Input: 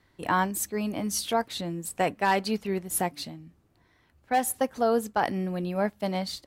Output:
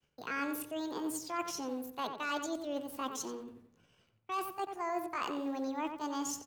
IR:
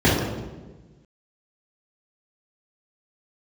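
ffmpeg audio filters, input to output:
-filter_complex "[0:a]acrossover=split=6200[a][b];[b]acompressor=threshold=-46dB:ratio=4:attack=1:release=60[c];[a][c]amix=inputs=2:normalize=0,asetrate=66075,aresample=44100,atempo=0.66742,areverse,acompressor=threshold=-36dB:ratio=4,areverse,agate=range=-33dB:threshold=-59dB:ratio=3:detection=peak,acrossover=split=140|2300[d][e][f];[d]aeval=exprs='(mod(1060*val(0)+1,2)-1)/1060':c=same[g];[g][e][f]amix=inputs=3:normalize=0,asplit=2[h][i];[i]adelay=90,lowpass=f=2.3k:p=1,volume=-6.5dB,asplit=2[j][k];[k]adelay=90,lowpass=f=2.3k:p=1,volume=0.38,asplit=2[l][m];[m]adelay=90,lowpass=f=2.3k:p=1,volume=0.38,asplit=2[n][o];[o]adelay=90,lowpass=f=2.3k:p=1,volume=0.38[p];[h][j][l][n][p]amix=inputs=5:normalize=0"

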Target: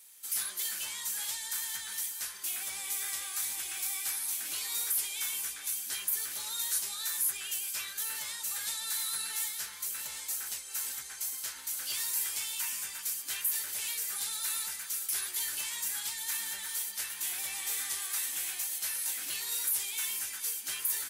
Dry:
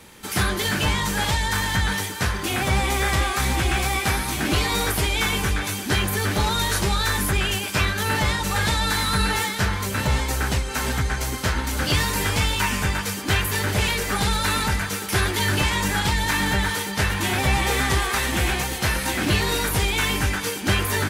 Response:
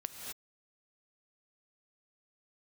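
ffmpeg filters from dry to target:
-filter_complex "[0:a]aderivative,acrossover=split=6400[a][b];[b]acontrast=27[c];[a][c]amix=inputs=2:normalize=0,volume=-8dB"

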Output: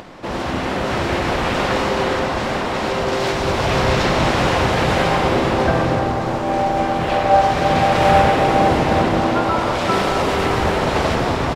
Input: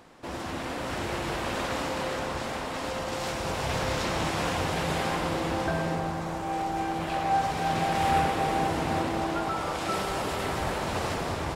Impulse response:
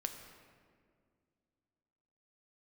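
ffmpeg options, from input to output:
-filter_complex "[0:a]acompressor=mode=upward:threshold=-45dB:ratio=2.5,asplit=2[a][b];[b]asetrate=33038,aresample=44100,atempo=1.33484,volume=-3dB[c];[a][c]amix=inputs=2:normalize=0,asplit=2[d][e];[1:a]atrim=start_sample=2205,lowpass=6.2k[f];[e][f]afir=irnorm=-1:irlink=0,volume=2.5dB[g];[d][g]amix=inputs=2:normalize=0,volume=3.5dB"

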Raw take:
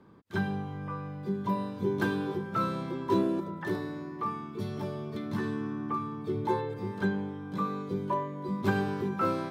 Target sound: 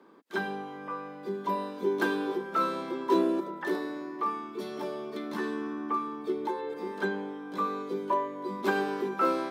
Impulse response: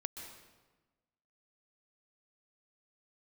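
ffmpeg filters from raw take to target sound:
-filter_complex "[0:a]highpass=f=270:w=0.5412,highpass=f=270:w=1.3066,asettb=1/sr,asplit=3[a][b][c];[a]atrim=end=6.324[d];[b]atrim=start=6.32:end=6.86,asetpts=PTS-STARTPTS,afade=t=in:d=0.004:c=qsin,afade=t=out:st=0.536:d=0.004:c=qsin,acompressor=threshold=-32dB:ratio=6[e];[c]atrim=start=6.856[f];[d][e]acrossfade=d=0.004:c1=hsin:c2=qsin[g];[g][f]acrossfade=d=0.004:c1=qsin:c2=hsin,volume=3dB"

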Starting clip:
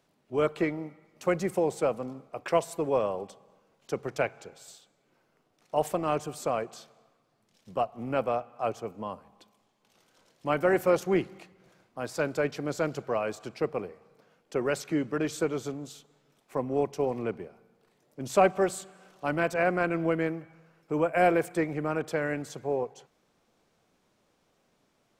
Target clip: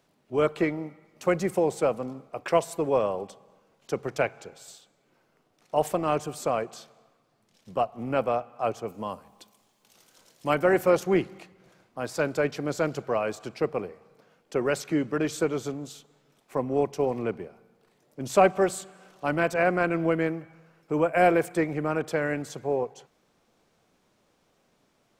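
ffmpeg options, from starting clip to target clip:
-filter_complex "[0:a]asettb=1/sr,asplit=3[a][b][c];[a]atrim=end=8.884[d];[b]atrim=start=8.88:end=10.55,asetpts=PTS-STARTPTS,afade=t=in:d=0.004:c=qsin,afade=t=out:st=1.666:d=0.004:c=qsin,highshelf=f=5k:g=11.5[e];[c]atrim=start=10.546[f];[d][e]acrossfade=d=0.004:c1=hsin:c2=qsin[g];[g][f]acrossfade=d=0.004:c1=qsin:c2=hsin,volume=2.5dB"

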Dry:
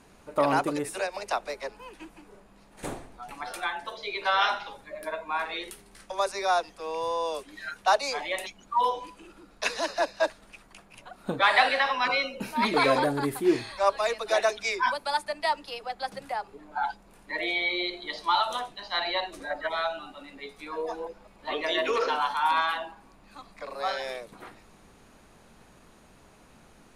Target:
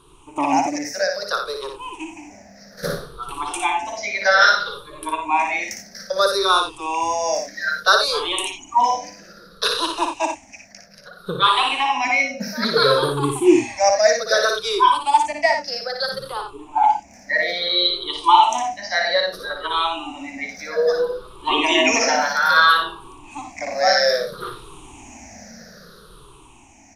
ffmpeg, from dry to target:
-filter_complex "[0:a]afftfilt=real='re*pow(10,22/40*sin(2*PI*(0.64*log(max(b,1)*sr/1024/100)/log(2)-(-0.61)*(pts-256)/sr)))':imag='im*pow(10,22/40*sin(2*PI*(0.64*log(max(b,1)*sr/1024/100)/log(2)-(-0.61)*(pts-256)/sr)))':win_size=1024:overlap=0.75,equalizer=f=5.7k:t=o:w=0.38:g=12.5,dynaudnorm=f=290:g=11:m=14dB,asplit=2[a][b];[b]aecho=0:1:58|88:0.531|0.266[c];[a][c]amix=inputs=2:normalize=0,volume=-2dB"

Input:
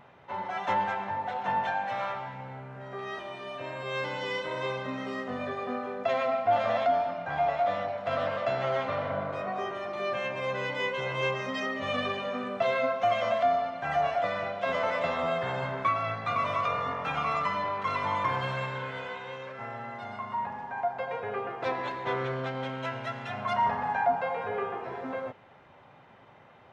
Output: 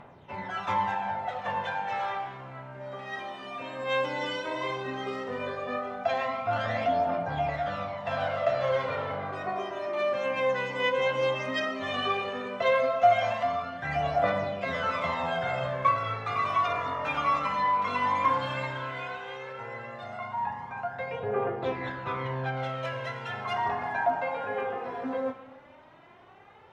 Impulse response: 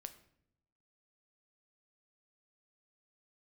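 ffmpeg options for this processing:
-filter_complex "[0:a]asettb=1/sr,asplit=3[a][b][c];[a]atrim=end=21.194[d];[b]atrim=start=21.19:end=22.57,asetpts=PTS-STARTPTS,afade=t=in:d=0.004:c=qsin,afade=t=out:st=1.376:d=0.004:c=qsin,lowpass=f=2.7k:p=1[e];[c]atrim=start=22.566[f];[d][e]acrossfade=d=0.004:c1=hsin:c2=qsin[g];[g][f]acrossfade=d=0.004:c1=qsin:c2=hsin,aphaser=in_gain=1:out_gain=1:delay=4.2:decay=0.6:speed=0.14:type=triangular[h];[1:a]atrim=start_sample=2205,asetrate=26901,aresample=44100[i];[h][i]afir=irnorm=-1:irlink=0,volume=2dB"

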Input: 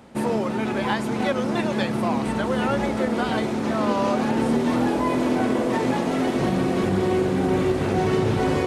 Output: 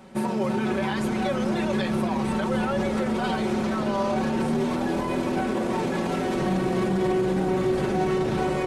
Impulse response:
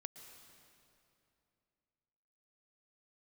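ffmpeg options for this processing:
-filter_complex "[0:a]alimiter=limit=-18.5dB:level=0:latency=1:release=14,aecho=1:1:5.3:0.82,asplit=7[a][b][c][d][e][f][g];[b]adelay=276,afreqshift=-68,volume=-14dB[h];[c]adelay=552,afreqshift=-136,volume=-19.2dB[i];[d]adelay=828,afreqshift=-204,volume=-24.4dB[j];[e]adelay=1104,afreqshift=-272,volume=-29.6dB[k];[f]adelay=1380,afreqshift=-340,volume=-34.8dB[l];[g]adelay=1656,afreqshift=-408,volume=-40dB[m];[a][h][i][j][k][l][m]amix=inputs=7:normalize=0,volume=-2dB"

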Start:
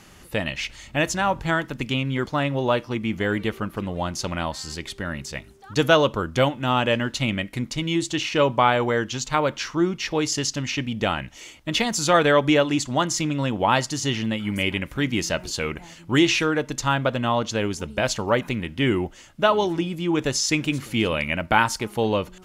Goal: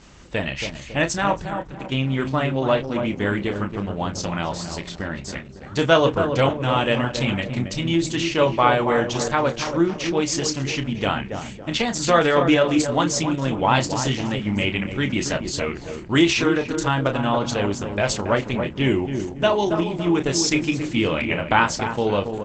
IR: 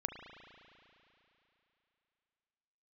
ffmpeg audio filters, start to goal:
-filter_complex "[0:a]asplit=2[a][b];[b]adelay=30,volume=-8dB[c];[a][c]amix=inputs=2:normalize=0,asettb=1/sr,asplit=3[d][e][f];[d]atrim=end=1.444[g];[e]atrim=start=1.44:end=1.92,asetpts=PTS-STARTPTS,afade=t=in:d=0.004:c=qsin,afade=t=out:st=0.476:d=0.004:c=qsin,acompressor=threshold=-32dB:ratio=12[h];[f]atrim=start=1.916[i];[g][h]acrossfade=d=0.004:c1=hsin:c2=qsin[j];[j][i]acrossfade=d=0.004:c1=qsin:c2=hsin,aeval=exprs='val(0)+0.00224*(sin(2*PI*50*n/s)+sin(2*PI*2*50*n/s)/2+sin(2*PI*3*50*n/s)/3+sin(2*PI*4*50*n/s)/4+sin(2*PI*5*50*n/s)/5)':c=same,asplit=2[k][l];[l]adelay=277,lowpass=f=1k:p=1,volume=-6dB,asplit=2[m][n];[n]adelay=277,lowpass=f=1k:p=1,volume=0.51,asplit=2[o][p];[p]adelay=277,lowpass=f=1k:p=1,volume=0.51,asplit=2[q][r];[r]adelay=277,lowpass=f=1k:p=1,volume=0.51,asplit=2[s][t];[t]adelay=277,lowpass=f=1k:p=1,volume=0.51,asplit=2[u][v];[v]adelay=277,lowpass=f=1k:p=1,volume=0.51[w];[k][m][o][q][s][u][w]amix=inputs=7:normalize=0,asettb=1/sr,asplit=3[x][y][z];[x]atrim=end=13.944[aa];[y]atrim=start=13.94:end=14.64,asetpts=PTS-STARTPTS,afade=t=in:d=0.004:c=qsin,afade=t=out:st=0.696:d=0.004:c=qsin,adynamicequalizer=threshold=0.00631:dfrequency=6900:dqfactor=2.1:tfrequency=6900:tqfactor=2.1:attack=5:release=100:ratio=0.375:range=2:mode=boostabove:tftype=bell[ab];[z]atrim=start=14.636[ac];[aa][ab]acrossfade=d=0.004:c1=hsin:c2=qsin[ad];[ad][ac]acrossfade=d=0.004:c1=qsin:c2=hsin,acrusher=bits=11:mix=0:aa=0.000001,asettb=1/sr,asplit=3[ae][af][ag];[ae]atrim=end=18.844[ah];[af]atrim=start=18.84:end=19.71,asetpts=PTS-STARTPTS,afade=t=in:d=0.004:c=qsin,afade=t=out:st=0.866:d=0.004:c=qsin,equalizer=f=1.25k:t=o:w=0.33:g=-9,equalizer=f=6.3k:t=o:w=0.33:g=7,equalizer=f=10k:t=o:w=0.33:g=-7[ai];[ag]atrim=start=19.706[aj];[ah][ai]acrossfade=d=0.004:c1=hsin:c2=qsin[ak];[ak][aj]acrossfade=d=0.004:c1=qsin:c2=hsin,volume=1dB" -ar 48000 -c:a libopus -b:a 12k

